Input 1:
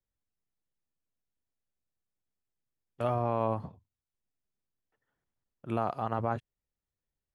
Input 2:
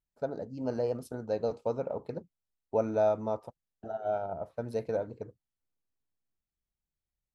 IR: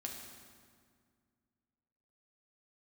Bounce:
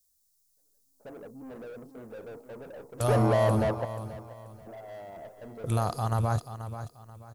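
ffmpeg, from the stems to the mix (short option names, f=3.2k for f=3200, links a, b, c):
-filter_complex "[0:a]asubboost=boost=8.5:cutoff=96,aexciter=amount=4.7:drive=9.9:freq=4.1k,volume=1.5dB,asplit=3[a][b][c];[b]volume=-11dB[d];[1:a]tiltshelf=f=1.2k:g=9.5,asplit=2[e][f];[f]highpass=f=720:p=1,volume=33dB,asoftclip=type=tanh:threshold=-9.5dB[g];[e][g]amix=inputs=2:normalize=0,lowpass=f=1.4k:p=1,volume=-6dB,adelay=350,volume=-9.5dB,asplit=2[h][i];[i]volume=-16.5dB[j];[c]apad=whole_len=339374[k];[h][k]sidechaingate=range=-57dB:threshold=-60dB:ratio=16:detection=peak[l];[d][j]amix=inputs=2:normalize=0,aecho=0:1:484|968|1452|1936:1|0.31|0.0961|0.0298[m];[a][l][m]amix=inputs=3:normalize=0"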